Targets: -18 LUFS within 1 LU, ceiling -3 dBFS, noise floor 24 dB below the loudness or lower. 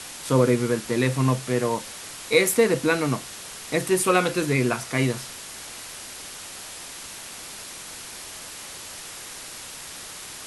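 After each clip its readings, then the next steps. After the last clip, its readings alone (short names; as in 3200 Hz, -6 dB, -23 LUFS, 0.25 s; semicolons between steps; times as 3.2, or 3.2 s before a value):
noise floor -39 dBFS; noise floor target -48 dBFS; loudness -23.5 LUFS; peak -5.5 dBFS; loudness target -18.0 LUFS
-> denoiser 9 dB, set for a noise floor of -39 dBFS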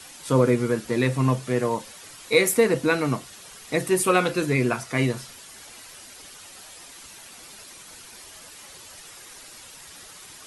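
noise floor -45 dBFS; noise floor target -47 dBFS
-> denoiser 6 dB, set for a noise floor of -45 dBFS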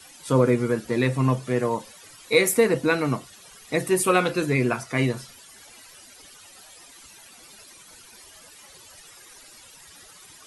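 noise floor -49 dBFS; loudness -23.0 LUFS; peak -5.5 dBFS; loudness target -18.0 LUFS
-> gain +5 dB; limiter -3 dBFS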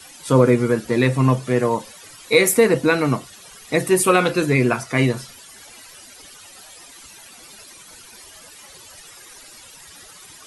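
loudness -18.5 LUFS; peak -3.0 dBFS; noise floor -44 dBFS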